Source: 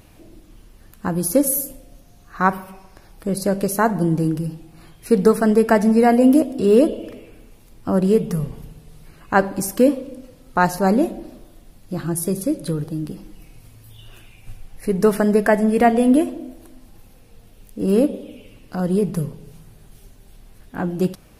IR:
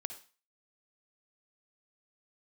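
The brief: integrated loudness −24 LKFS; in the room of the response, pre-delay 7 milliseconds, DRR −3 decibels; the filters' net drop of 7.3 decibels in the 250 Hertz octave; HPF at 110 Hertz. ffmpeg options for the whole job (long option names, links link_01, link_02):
-filter_complex "[0:a]highpass=110,equalizer=frequency=250:width_type=o:gain=-9,asplit=2[link_01][link_02];[1:a]atrim=start_sample=2205,adelay=7[link_03];[link_02][link_03]afir=irnorm=-1:irlink=0,volume=4.5dB[link_04];[link_01][link_04]amix=inputs=2:normalize=0,volume=-6.5dB"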